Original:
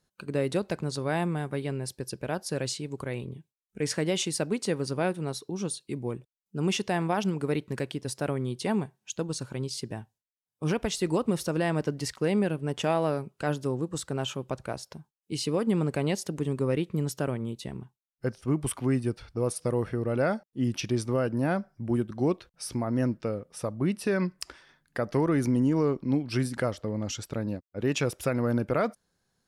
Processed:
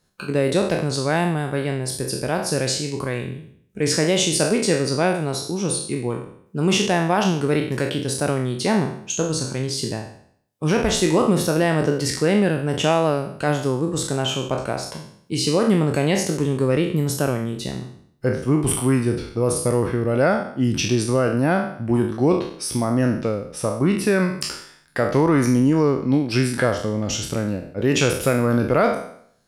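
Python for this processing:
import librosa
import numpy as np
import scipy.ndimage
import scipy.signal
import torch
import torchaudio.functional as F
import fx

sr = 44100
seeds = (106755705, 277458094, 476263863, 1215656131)

y = fx.spec_trails(x, sr, decay_s=0.62)
y = F.gain(torch.from_numpy(y), 7.0).numpy()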